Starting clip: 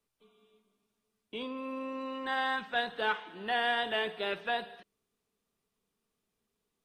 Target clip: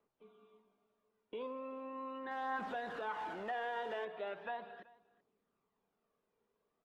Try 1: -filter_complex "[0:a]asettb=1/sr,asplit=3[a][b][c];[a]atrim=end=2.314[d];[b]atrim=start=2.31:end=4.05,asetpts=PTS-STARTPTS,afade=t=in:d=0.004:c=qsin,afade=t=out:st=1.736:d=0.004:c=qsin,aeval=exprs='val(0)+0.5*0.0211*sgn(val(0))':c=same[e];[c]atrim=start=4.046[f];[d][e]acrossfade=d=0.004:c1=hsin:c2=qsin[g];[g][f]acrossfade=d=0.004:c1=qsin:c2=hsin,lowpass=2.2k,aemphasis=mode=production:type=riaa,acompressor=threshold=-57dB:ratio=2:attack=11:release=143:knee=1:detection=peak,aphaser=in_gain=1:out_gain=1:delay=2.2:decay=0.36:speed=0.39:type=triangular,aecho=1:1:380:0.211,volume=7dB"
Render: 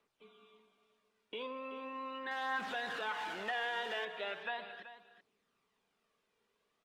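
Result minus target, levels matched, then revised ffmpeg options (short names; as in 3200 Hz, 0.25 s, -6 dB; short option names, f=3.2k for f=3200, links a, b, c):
echo-to-direct +9 dB; 2000 Hz band +4.0 dB
-filter_complex "[0:a]asettb=1/sr,asplit=3[a][b][c];[a]atrim=end=2.314[d];[b]atrim=start=2.31:end=4.05,asetpts=PTS-STARTPTS,afade=t=in:d=0.004:c=qsin,afade=t=out:st=1.736:d=0.004:c=qsin,aeval=exprs='val(0)+0.5*0.0211*sgn(val(0))':c=same[e];[c]atrim=start=4.046[f];[d][e]acrossfade=d=0.004:c1=hsin:c2=qsin[g];[g][f]acrossfade=d=0.004:c1=qsin:c2=hsin,lowpass=1k,aemphasis=mode=production:type=riaa,acompressor=threshold=-57dB:ratio=2:attack=11:release=143:knee=1:detection=peak,aphaser=in_gain=1:out_gain=1:delay=2.2:decay=0.36:speed=0.39:type=triangular,aecho=1:1:380:0.075,volume=7dB"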